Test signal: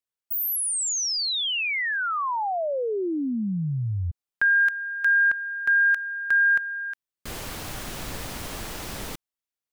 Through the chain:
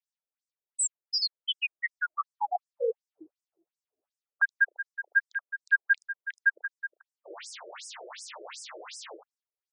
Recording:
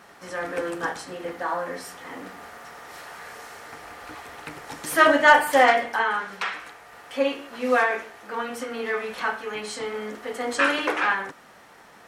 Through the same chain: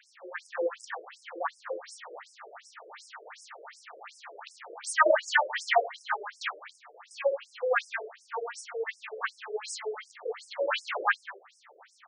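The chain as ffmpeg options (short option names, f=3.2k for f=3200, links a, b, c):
-af "aecho=1:1:33|76:0.266|0.398,afftfilt=real='re*between(b*sr/1024,440*pow(7100/440,0.5+0.5*sin(2*PI*2.7*pts/sr))/1.41,440*pow(7100/440,0.5+0.5*sin(2*PI*2.7*pts/sr))*1.41)':imag='im*between(b*sr/1024,440*pow(7100/440,0.5+0.5*sin(2*PI*2.7*pts/sr))/1.41,440*pow(7100/440,0.5+0.5*sin(2*PI*2.7*pts/sr))*1.41)':win_size=1024:overlap=0.75"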